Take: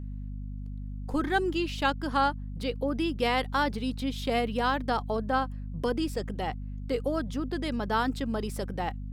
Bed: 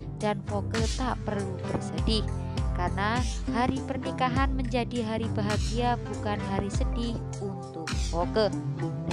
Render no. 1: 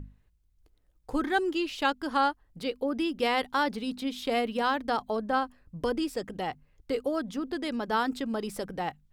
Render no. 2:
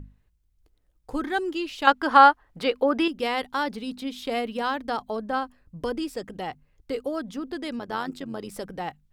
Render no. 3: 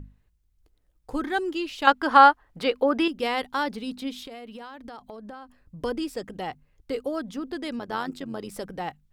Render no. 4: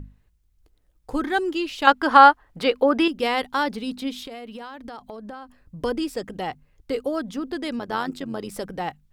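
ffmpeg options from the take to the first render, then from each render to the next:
-af "bandreject=f=50:t=h:w=6,bandreject=f=100:t=h:w=6,bandreject=f=150:t=h:w=6,bandreject=f=200:t=h:w=6,bandreject=f=250:t=h:w=6"
-filter_complex "[0:a]asettb=1/sr,asplit=3[a][b][c];[a]atrim=end=1.874[d];[b]atrim=start=1.87:end=3.08,asetpts=PTS-STARTPTS,afade=t=in:d=0.004:c=qsin,afade=t=out:st=1.206:d=0.004:c=qsin,equalizer=f=1.2k:w=0.35:g=13[e];[c]atrim=start=3.076[f];[d][e]acrossfade=d=0.004:c1=hsin:c2=qsin[g];[g][f]acrossfade=d=0.004:c1=qsin:c2=hsin,asettb=1/sr,asplit=3[h][i][j];[h]atrim=end=7.794[k];[i]atrim=start=7.79:end=8.52,asetpts=PTS-STARTPTS,afade=t=in:d=0.004:c=qsin,afade=t=out:st=0.726:d=0.004:c=qsin,tremolo=f=94:d=0.667[l];[j]atrim=start=8.516[m];[k][l]acrossfade=d=0.004:c1=hsin:c2=qsin[n];[n][m]acrossfade=d=0.004:c1=qsin:c2=hsin"
-filter_complex "[0:a]asettb=1/sr,asplit=3[a][b][c];[a]atrim=end=4.224[d];[b]atrim=start=4.22:end=5.83,asetpts=PTS-STARTPTS,afade=t=in:d=0.004:c=qsin,afade=t=out:st=1.606:d=0.004:c=qsin,acompressor=threshold=-37dB:ratio=12:attack=3.2:release=140:knee=1:detection=peak[e];[c]atrim=start=5.826[f];[d][e]acrossfade=d=0.004:c1=hsin:c2=qsin[g];[g][f]acrossfade=d=0.004:c1=qsin:c2=hsin"
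-af "volume=3.5dB,alimiter=limit=-1dB:level=0:latency=1"

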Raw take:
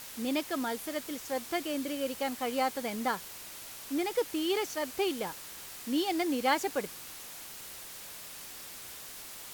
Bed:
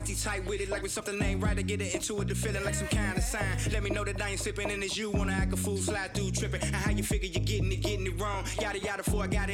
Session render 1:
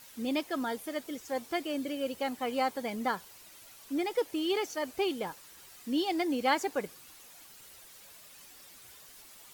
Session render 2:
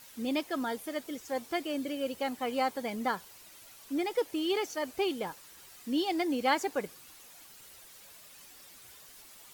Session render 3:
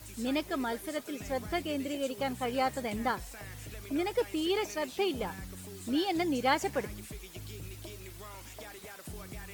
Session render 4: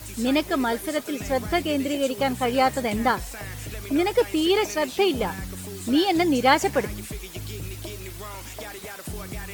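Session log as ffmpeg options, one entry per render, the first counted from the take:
-af "afftdn=nr=10:nf=-46"
-af anull
-filter_complex "[1:a]volume=-15dB[a];[0:a][a]amix=inputs=2:normalize=0"
-af "volume=9.5dB"

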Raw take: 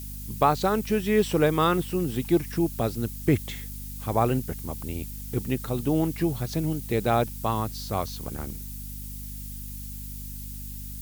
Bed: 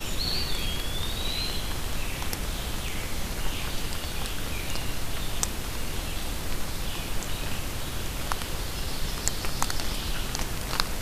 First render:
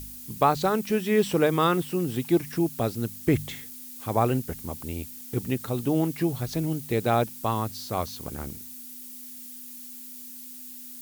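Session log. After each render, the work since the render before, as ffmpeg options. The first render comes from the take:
-af "bandreject=f=50:t=h:w=4,bandreject=f=100:t=h:w=4,bandreject=f=150:t=h:w=4,bandreject=f=200:t=h:w=4"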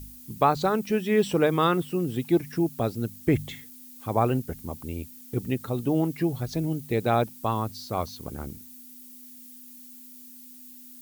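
-af "afftdn=nr=7:nf=-42"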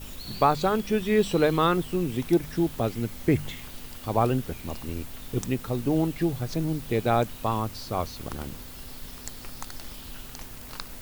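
-filter_complex "[1:a]volume=-12dB[a];[0:a][a]amix=inputs=2:normalize=0"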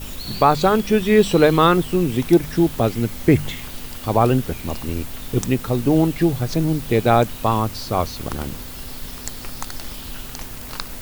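-af "volume=8dB,alimiter=limit=-3dB:level=0:latency=1"

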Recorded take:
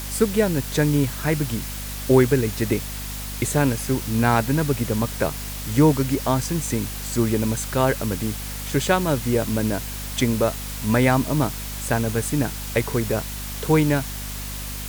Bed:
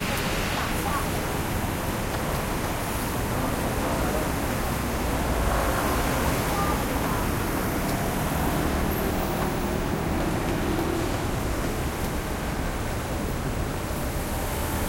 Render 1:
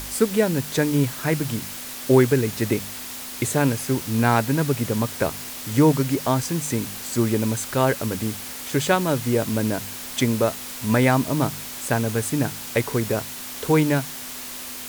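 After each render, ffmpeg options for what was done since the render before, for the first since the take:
-af "bandreject=f=50:t=h:w=4,bandreject=f=100:t=h:w=4,bandreject=f=150:t=h:w=4,bandreject=f=200:t=h:w=4"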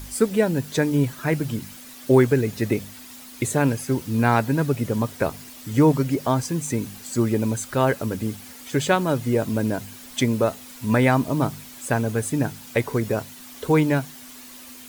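-af "afftdn=nr=10:nf=-35"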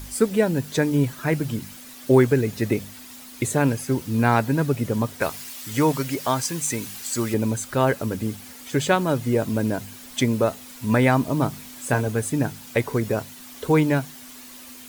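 -filter_complex "[0:a]asettb=1/sr,asplit=3[a][b][c];[a]atrim=end=5.214[d];[b]atrim=start=5.21:end=7.34,asetpts=PTS-STARTPTS,afade=t=in:d=0.004:c=qsin,afade=t=out:st=2.126:d=0.004:c=qsin,tiltshelf=f=790:g=-6[e];[c]atrim=start=7.336[f];[d][e]acrossfade=d=0.004:c1=hsin:c2=qsin[g];[g][f]acrossfade=d=0.004:c1=qsin:c2=hsin,asettb=1/sr,asplit=3[h][i][j];[h]atrim=end=11.514[k];[i]atrim=start=11.51:end=12.08,asetpts=PTS-STARTPTS,afade=t=in:d=0.004:c=qsin,afade=t=out:st=0.566:d=0.004:c=qsin,asplit=2[l][m];[m]adelay=24,volume=-7.5dB[n];[l][n]amix=inputs=2:normalize=0,atrim=end_sample=25137[o];[j]atrim=start=12.076[p];[k][o]acrossfade=d=0.004:c1=hsin:c2=qsin[q];[q][p]acrossfade=d=0.004:c1=qsin:c2=hsin"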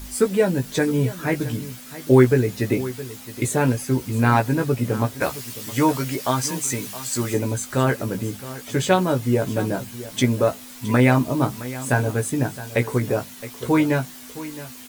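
-filter_complex "[0:a]asplit=2[a][b];[b]adelay=16,volume=-5dB[c];[a][c]amix=inputs=2:normalize=0,aecho=1:1:666:0.168"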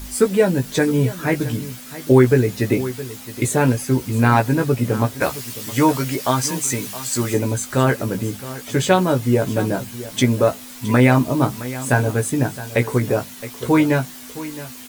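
-af "volume=3dB,alimiter=limit=-3dB:level=0:latency=1"

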